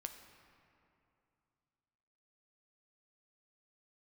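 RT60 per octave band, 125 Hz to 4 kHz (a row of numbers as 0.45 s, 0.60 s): 3.2 s, 3.0 s, 2.7 s, 2.7 s, 2.3 s, 1.6 s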